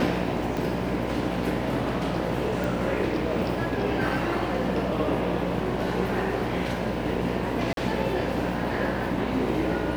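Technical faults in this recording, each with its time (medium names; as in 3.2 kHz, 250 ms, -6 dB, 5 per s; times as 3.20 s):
buzz 60 Hz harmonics 17 -32 dBFS
0.57 s: pop
2.64 s: pop
7.73–7.77 s: dropout 42 ms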